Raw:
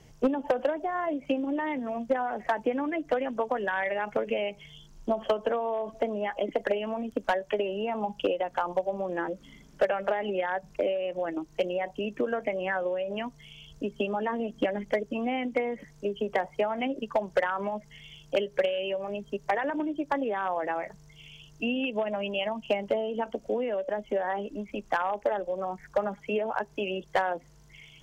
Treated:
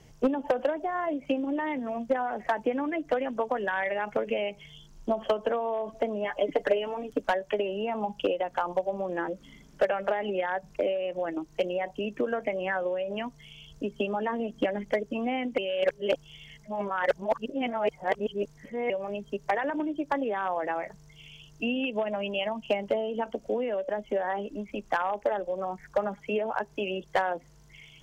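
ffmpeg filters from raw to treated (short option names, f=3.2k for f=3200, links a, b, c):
-filter_complex "[0:a]asettb=1/sr,asplit=3[a][b][c];[a]atrim=end=6.244[d];[b]atrim=start=6.24:end=7.21,asetpts=PTS-STARTPTS,afade=t=in:d=0.004:c=qsin,afade=t=out:st=0.966:d=0.004:c=qsin,aecho=1:1:6.8:0.7,atrim=end_sample=42777[e];[c]atrim=start=7.206[f];[d][e]acrossfade=d=0.004:c1=hsin:c2=qsin[g];[g][f]acrossfade=d=0.004:c1=qsin:c2=hsin,asplit=3[h][i][j];[h]atrim=end=15.582[k];[i]atrim=start=15.578:end=18.902,asetpts=PTS-STARTPTS,areverse[l];[j]atrim=start=18.898[m];[k][l]acrossfade=d=0.004:c1=hsin:c2=hsin[n];[n][m]acrossfade=d=0.004:c1=hsin:c2=hsin"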